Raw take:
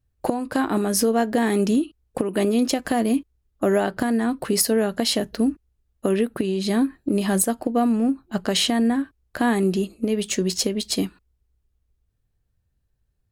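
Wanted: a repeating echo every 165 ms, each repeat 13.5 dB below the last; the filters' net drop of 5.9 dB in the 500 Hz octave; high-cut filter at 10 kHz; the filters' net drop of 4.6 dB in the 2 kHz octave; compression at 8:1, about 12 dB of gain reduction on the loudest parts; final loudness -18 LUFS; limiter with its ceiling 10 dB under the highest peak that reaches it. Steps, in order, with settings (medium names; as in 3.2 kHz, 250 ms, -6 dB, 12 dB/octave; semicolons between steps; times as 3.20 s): low-pass 10 kHz; peaking EQ 500 Hz -7.5 dB; peaking EQ 2 kHz -5.5 dB; compression 8:1, threshold -31 dBFS; peak limiter -28 dBFS; feedback delay 165 ms, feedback 21%, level -13.5 dB; trim +19 dB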